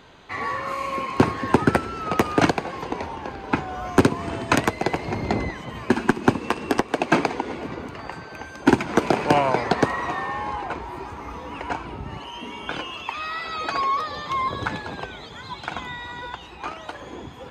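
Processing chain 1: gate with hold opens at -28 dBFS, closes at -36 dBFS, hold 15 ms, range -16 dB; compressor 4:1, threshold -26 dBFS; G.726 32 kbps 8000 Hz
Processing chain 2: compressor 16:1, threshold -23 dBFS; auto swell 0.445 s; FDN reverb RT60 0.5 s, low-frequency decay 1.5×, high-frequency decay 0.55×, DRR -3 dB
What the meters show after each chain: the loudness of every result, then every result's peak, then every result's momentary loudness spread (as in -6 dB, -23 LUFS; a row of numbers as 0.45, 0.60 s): -31.5, -31.0 LUFS; -10.5, -11.5 dBFS; 6, 15 LU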